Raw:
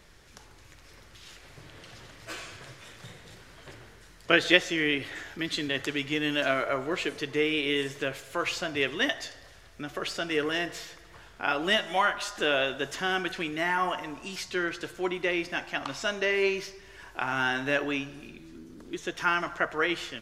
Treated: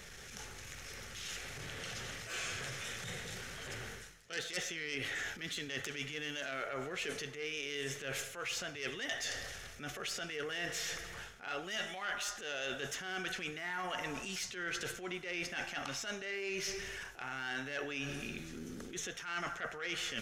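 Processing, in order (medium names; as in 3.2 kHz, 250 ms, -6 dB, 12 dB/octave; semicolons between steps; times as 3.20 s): self-modulated delay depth 0.17 ms; transient shaper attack -9 dB, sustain +3 dB; graphic EQ with 31 bands 315 Hz -11 dB, 630 Hz -6 dB, 1 kHz -11 dB, 4 kHz -3 dB, 6.3 kHz +4 dB; reverse; compression 12:1, threshold -44 dBFS, peak gain reduction 24 dB; reverse; bass shelf 160 Hz -6.5 dB; band-stop 4.7 kHz, Q 16; trim +8 dB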